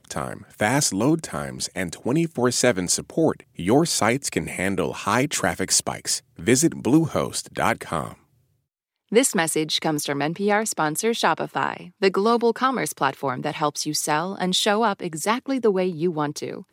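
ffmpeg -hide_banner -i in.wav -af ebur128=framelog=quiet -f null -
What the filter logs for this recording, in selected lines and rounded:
Integrated loudness:
  I:         -22.6 LUFS
  Threshold: -32.7 LUFS
Loudness range:
  LRA:         1.6 LU
  Threshold: -42.7 LUFS
  LRA low:   -23.6 LUFS
  LRA high:  -22.0 LUFS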